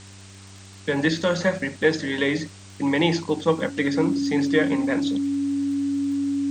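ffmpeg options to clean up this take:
ffmpeg -i in.wav -af "adeclick=threshold=4,bandreject=frequency=97.2:width_type=h:width=4,bandreject=frequency=194.4:width_type=h:width=4,bandreject=frequency=291.6:width_type=h:width=4,bandreject=frequency=388.8:width_type=h:width=4,bandreject=frequency=280:width=30,afwtdn=0.0056" out.wav

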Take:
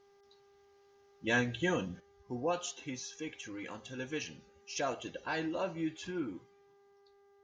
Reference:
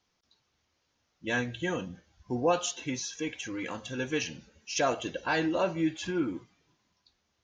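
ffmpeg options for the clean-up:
ffmpeg -i in.wav -af "bandreject=frequency=400.2:width_type=h:width=4,bandreject=frequency=800.4:width_type=h:width=4,bandreject=frequency=1200.6:width_type=h:width=4,bandreject=frequency=1600.8:width_type=h:width=4,bandreject=frequency=2001:width_type=h:width=4,asetnsamples=nb_out_samples=441:pad=0,asendcmd='2 volume volume 7.5dB',volume=0dB" out.wav

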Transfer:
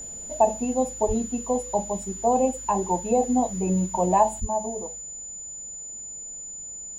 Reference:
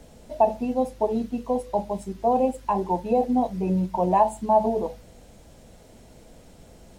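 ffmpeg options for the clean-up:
ffmpeg -i in.wav -filter_complex "[0:a]bandreject=frequency=7000:width=30,asplit=3[link_01][link_02][link_03];[link_01]afade=type=out:start_time=1.07:duration=0.02[link_04];[link_02]highpass=frequency=140:width=0.5412,highpass=frequency=140:width=1.3066,afade=type=in:start_time=1.07:duration=0.02,afade=type=out:start_time=1.19:duration=0.02[link_05];[link_03]afade=type=in:start_time=1.19:duration=0.02[link_06];[link_04][link_05][link_06]amix=inputs=3:normalize=0,asplit=3[link_07][link_08][link_09];[link_07]afade=type=out:start_time=4.4:duration=0.02[link_10];[link_08]highpass=frequency=140:width=0.5412,highpass=frequency=140:width=1.3066,afade=type=in:start_time=4.4:duration=0.02,afade=type=out:start_time=4.52:duration=0.02[link_11];[link_09]afade=type=in:start_time=4.52:duration=0.02[link_12];[link_10][link_11][link_12]amix=inputs=3:normalize=0,asetnsamples=nb_out_samples=441:pad=0,asendcmd='4.4 volume volume 8dB',volume=0dB" out.wav

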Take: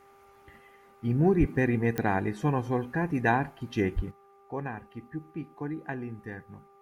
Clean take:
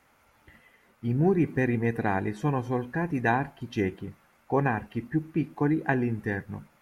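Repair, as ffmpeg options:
ffmpeg -i in.wav -filter_complex "[0:a]adeclick=threshold=4,bandreject=frequency=396.8:width_type=h:width=4,bandreject=frequency=793.6:width_type=h:width=4,bandreject=frequency=1190.4:width_type=h:width=4,asplit=3[link_01][link_02][link_03];[link_01]afade=type=out:start_time=1.39:duration=0.02[link_04];[link_02]highpass=frequency=140:width=0.5412,highpass=frequency=140:width=1.3066,afade=type=in:start_time=1.39:duration=0.02,afade=type=out:start_time=1.51:duration=0.02[link_05];[link_03]afade=type=in:start_time=1.51:duration=0.02[link_06];[link_04][link_05][link_06]amix=inputs=3:normalize=0,asplit=3[link_07][link_08][link_09];[link_07]afade=type=out:start_time=3.95:duration=0.02[link_10];[link_08]highpass=frequency=140:width=0.5412,highpass=frequency=140:width=1.3066,afade=type=in:start_time=3.95:duration=0.02,afade=type=out:start_time=4.07:duration=0.02[link_11];[link_09]afade=type=in:start_time=4.07:duration=0.02[link_12];[link_10][link_11][link_12]amix=inputs=3:normalize=0,asetnsamples=nb_out_samples=441:pad=0,asendcmd='4.11 volume volume 10dB',volume=0dB" out.wav

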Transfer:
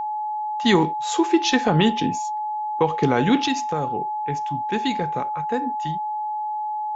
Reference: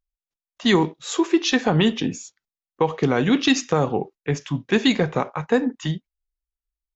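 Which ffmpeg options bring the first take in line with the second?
ffmpeg -i in.wav -af "bandreject=frequency=850:width=30,asetnsamples=nb_out_samples=441:pad=0,asendcmd='3.47 volume volume 7dB',volume=0dB" out.wav

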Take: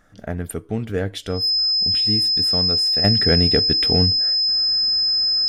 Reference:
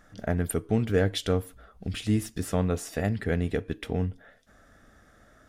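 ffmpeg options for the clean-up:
ffmpeg -i in.wav -af "bandreject=frequency=5100:width=30,asetnsamples=nb_out_samples=441:pad=0,asendcmd='3.04 volume volume -9dB',volume=0dB" out.wav

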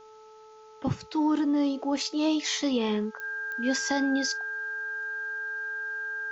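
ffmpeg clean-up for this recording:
ffmpeg -i in.wav -af "adeclick=threshold=4,bandreject=frequency=435:width_type=h:width=4,bandreject=frequency=870:width_type=h:width=4,bandreject=frequency=1305:width_type=h:width=4,bandreject=frequency=1600:width=30,agate=range=-21dB:threshold=-43dB" out.wav

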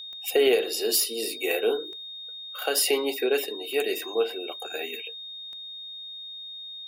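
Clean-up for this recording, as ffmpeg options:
ffmpeg -i in.wav -af "adeclick=threshold=4,bandreject=frequency=3700:width=30" out.wav

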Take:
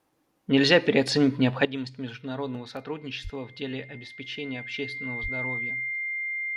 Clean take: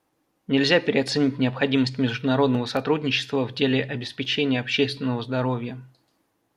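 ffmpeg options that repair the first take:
ffmpeg -i in.wav -filter_complex "[0:a]bandreject=frequency=2100:width=30,asplit=3[link_01][link_02][link_03];[link_01]afade=type=out:start_time=3.23:duration=0.02[link_04];[link_02]highpass=frequency=140:width=0.5412,highpass=frequency=140:width=1.3066,afade=type=in:start_time=3.23:duration=0.02,afade=type=out:start_time=3.35:duration=0.02[link_05];[link_03]afade=type=in:start_time=3.35:duration=0.02[link_06];[link_04][link_05][link_06]amix=inputs=3:normalize=0,asplit=3[link_07][link_08][link_09];[link_07]afade=type=out:start_time=5.22:duration=0.02[link_10];[link_08]highpass=frequency=140:width=0.5412,highpass=frequency=140:width=1.3066,afade=type=in:start_time=5.22:duration=0.02,afade=type=out:start_time=5.34:duration=0.02[link_11];[link_09]afade=type=in:start_time=5.34:duration=0.02[link_12];[link_10][link_11][link_12]amix=inputs=3:normalize=0,asetnsamples=nb_out_samples=441:pad=0,asendcmd='1.65 volume volume 12dB',volume=0dB" out.wav

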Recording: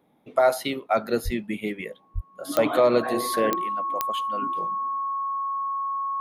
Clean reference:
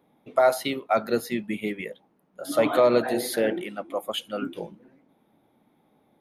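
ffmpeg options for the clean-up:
ffmpeg -i in.wav -filter_complex "[0:a]adeclick=threshold=4,bandreject=frequency=1100:width=30,asplit=3[link_01][link_02][link_03];[link_01]afade=type=out:start_time=1.24:duration=0.02[link_04];[link_02]highpass=frequency=140:width=0.5412,highpass=frequency=140:width=1.3066,afade=type=in:start_time=1.24:duration=0.02,afade=type=out:start_time=1.36:duration=0.02[link_05];[link_03]afade=type=in:start_time=1.36:duration=0.02[link_06];[link_04][link_05][link_06]amix=inputs=3:normalize=0,asplit=3[link_07][link_08][link_09];[link_07]afade=type=out:start_time=2.14:duration=0.02[link_10];[link_08]highpass=frequency=140:width=0.5412,highpass=frequency=140:width=1.3066,afade=type=in:start_time=2.14:duration=0.02,afade=type=out:start_time=2.26:duration=0.02[link_11];[link_09]afade=type=in:start_time=2.26:duration=0.02[link_12];[link_10][link_11][link_12]amix=inputs=3:normalize=0,asetnsamples=nb_out_samples=441:pad=0,asendcmd='3.55 volume volume 5dB',volume=0dB" out.wav

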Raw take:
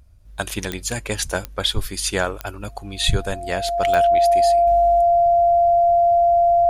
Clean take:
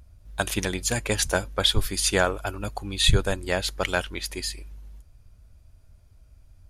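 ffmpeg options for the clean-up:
ffmpeg -i in.wav -af "adeclick=threshold=4,bandreject=frequency=690:width=30,asetnsamples=nb_out_samples=441:pad=0,asendcmd='4.67 volume volume -11.5dB',volume=0dB" out.wav

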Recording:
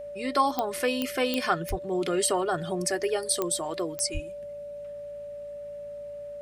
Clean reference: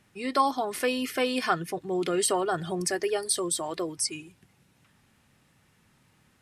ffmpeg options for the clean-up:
ffmpeg -i in.wav -filter_complex "[0:a]adeclick=threshold=4,bandreject=frequency=55.4:width_type=h:width=4,bandreject=frequency=110.8:width_type=h:width=4,bandreject=frequency=166.2:width_type=h:width=4,bandreject=frequency=221.6:width_type=h:width=4,bandreject=frequency=580:width=30,asplit=3[link_01][link_02][link_03];[link_01]afade=type=out:start_time=1.69:duration=0.02[link_04];[link_02]highpass=frequency=140:width=0.5412,highpass=frequency=140:width=1.3066,afade=type=in:start_time=1.69:duration=0.02,afade=type=out:start_time=1.81:duration=0.02[link_05];[link_03]afade=type=in:start_time=1.81:duration=0.02[link_06];[link_04][link_05][link_06]amix=inputs=3:normalize=0,asplit=3[link_07][link_08][link_09];[link_07]afade=type=out:start_time=4.13:duration=0.02[link_10];[link_08]highpass=frequency=140:width=0.5412,highpass=frequency=140:width=1.3066,afade=type=in:start_time=4.13:duration=0.02,afade=type=out:start_time=4.25:duration=0.02[link_11];[link_09]afade=type=in:start_time=4.25:duration=0.02[link_12];[link_10][link_11][link_12]amix=inputs=3:normalize=0" out.wav

